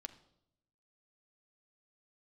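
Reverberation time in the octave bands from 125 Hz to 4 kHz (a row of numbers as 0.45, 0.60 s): 1.1, 1.0, 0.85, 0.70, 0.55, 0.65 s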